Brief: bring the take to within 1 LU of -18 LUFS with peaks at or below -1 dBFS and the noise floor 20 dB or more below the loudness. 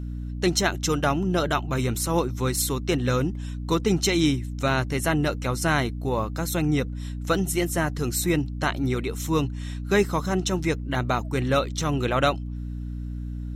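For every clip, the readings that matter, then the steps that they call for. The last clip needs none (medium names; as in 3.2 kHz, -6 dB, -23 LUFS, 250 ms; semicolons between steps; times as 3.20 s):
hum 60 Hz; highest harmonic 300 Hz; hum level -29 dBFS; loudness -25.0 LUFS; peak level -7.5 dBFS; loudness target -18.0 LUFS
-> hum notches 60/120/180/240/300 Hz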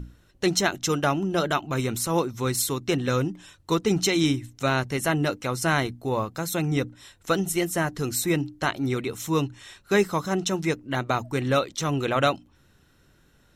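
hum not found; loudness -25.5 LUFS; peak level -7.5 dBFS; loudness target -18.0 LUFS
-> trim +7.5 dB; peak limiter -1 dBFS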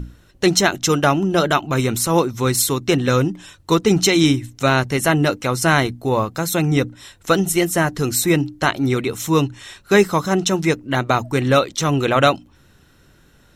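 loudness -18.0 LUFS; peak level -1.0 dBFS; noise floor -53 dBFS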